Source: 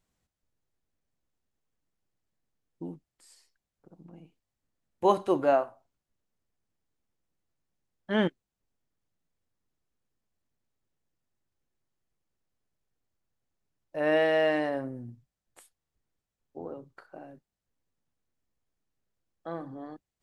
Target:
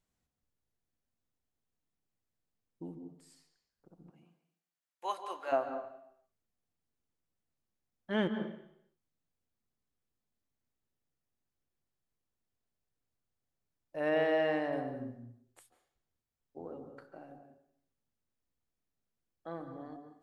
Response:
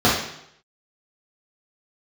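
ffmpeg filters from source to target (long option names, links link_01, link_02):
-filter_complex "[0:a]asplit=3[link_01][link_02][link_03];[link_01]afade=type=out:start_time=4.09:duration=0.02[link_04];[link_02]highpass=1100,afade=type=in:start_time=4.09:duration=0.02,afade=type=out:start_time=5.51:duration=0.02[link_05];[link_03]afade=type=in:start_time=5.51:duration=0.02[link_06];[link_04][link_05][link_06]amix=inputs=3:normalize=0,asettb=1/sr,asplit=3[link_07][link_08][link_09];[link_07]atrim=end=14.094[link_10];[link_08]atrim=start=14.09:end=14.73,asetpts=PTS-STARTPTS,afade=type=in:duration=0.004:curve=qsin,afade=type=out:start_time=0.636:duration=0.004:curve=qsin,highshelf=frequency=4900:gain=-7.5[link_11];[link_09]atrim=start=14.726[link_12];[link_10][link_11]acrossfade=duration=0.004:curve1=hsin:curve2=qsin[link_13];[link_13][link_12]acrossfade=duration=0.004:curve1=qsin:curve2=hsin,asplit=2[link_14][link_15];[1:a]atrim=start_sample=2205,adelay=136[link_16];[link_15][link_16]afir=irnorm=-1:irlink=0,volume=-30.5dB[link_17];[link_14][link_17]amix=inputs=2:normalize=0,volume=-5.5dB"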